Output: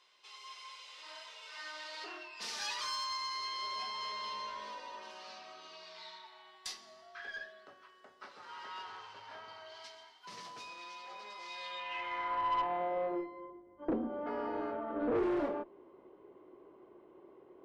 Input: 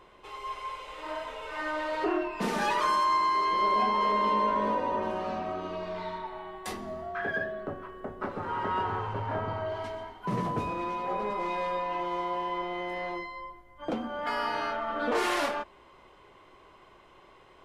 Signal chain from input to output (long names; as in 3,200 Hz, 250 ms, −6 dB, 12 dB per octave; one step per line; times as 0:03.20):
band-pass filter sweep 5,000 Hz → 350 Hz, 0:11.53–0:13.27
tube saturation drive 33 dB, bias 0.3
level +6.5 dB